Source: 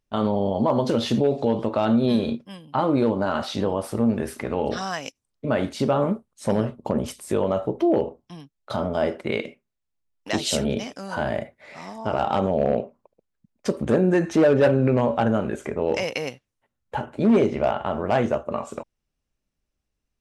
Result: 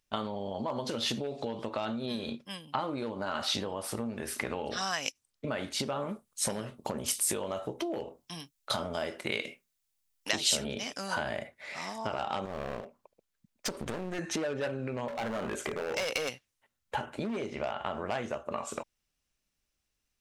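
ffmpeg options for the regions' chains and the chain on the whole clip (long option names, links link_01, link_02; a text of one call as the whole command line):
ffmpeg -i in.wav -filter_complex "[0:a]asettb=1/sr,asplit=3[link_01][link_02][link_03];[link_01]atrim=end=6.094[link_04];[link_02]atrim=start=6.09:end=10.31,asetpts=PTS-STARTPTS,afade=type=in:duration=0.004:curve=qsin,afade=type=out:start_time=4.216:duration=0.004:curve=qsin,highshelf=frequency=5200:gain=8.5,asplit=2[link_05][link_06];[link_06]adelay=24,volume=-13.5dB[link_07];[link_05][link_07]amix=inputs=2:normalize=0,atrim=end_sample=186102[link_08];[link_03]atrim=start=10.306[link_09];[link_04][link_08]acrossfade=duration=0.004:curve1=hsin:curve2=qsin[link_10];[link_10][link_09]acrossfade=duration=0.004:curve1=qsin:curve2=hsin,asettb=1/sr,asplit=3[link_11][link_12][link_13];[link_11]atrim=end=12.454[link_14];[link_12]atrim=start=12.45:end=14.19,asetpts=PTS-STARTPTS,afade=type=in:duration=0.004:curve=qsin,afade=type=out:start_time=1.736:duration=0.004:curve=qsin,acompressor=threshold=-23dB:ratio=2:attack=3.2:release=140:knee=1:detection=peak,aeval=exprs='clip(val(0),-1,0.0188)':channel_layout=same[link_15];[link_13]atrim=start=14.186[link_16];[link_14][link_15]acrossfade=duration=0.004:curve1=hsin:curve2=qsin[link_17];[link_17][link_16]acrossfade=duration=0.004:curve1=qsin:curve2=hsin,asettb=1/sr,asplit=3[link_18][link_19][link_20];[link_18]atrim=end=15.084[link_21];[link_19]atrim=start=15.08:end=16.29,asetpts=PTS-STARTPTS,afade=type=in:duration=0.004:curve=qsin,afade=type=out:start_time=1.206:duration=0.004:curve=qsin,equalizer=frequency=600:width_type=o:width=2:gain=4,acompressor=threshold=-21dB:ratio=4:attack=3.2:release=140:knee=1:detection=peak,asoftclip=type=hard:threshold=-24dB[link_22];[link_20]atrim=start=16.286[link_23];[link_21][link_22]acrossfade=duration=0.004:curve1=hsin:curve2=qsin[link_24];[link_24][link_23]acrossfade=duration=0.004:curve1=qsin:curve2=hsin,acompressor=threshold=-27dB:ratio=10,tiltshelf=frequency=1100:gain=-6" out.wav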